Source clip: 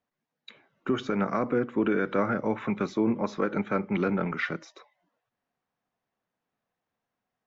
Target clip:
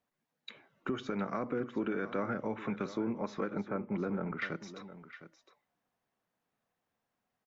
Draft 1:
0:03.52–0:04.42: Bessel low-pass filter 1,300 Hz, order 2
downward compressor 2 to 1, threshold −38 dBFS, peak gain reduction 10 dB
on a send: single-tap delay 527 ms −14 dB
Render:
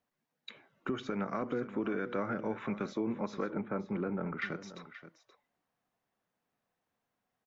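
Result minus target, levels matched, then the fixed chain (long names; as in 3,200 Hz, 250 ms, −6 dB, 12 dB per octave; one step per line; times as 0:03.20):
echo 183 ms early
0:03.52–0:04.42: Bessel low-pass filter 1,300 Hz, order 2
downward compressor 2 to 1, threshold −38 dBFS, peak gain reduction 10 dB
on a send: single-tap delay 710 ms −14 dB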